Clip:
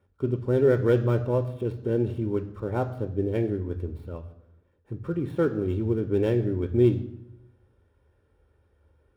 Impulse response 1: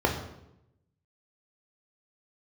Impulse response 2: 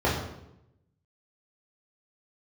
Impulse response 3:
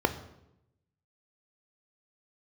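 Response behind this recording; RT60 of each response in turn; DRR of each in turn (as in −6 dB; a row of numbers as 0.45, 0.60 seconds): 3; 0.85, 0.85, 0.85 seconds; 1.0, −7.5, 8.5 decibels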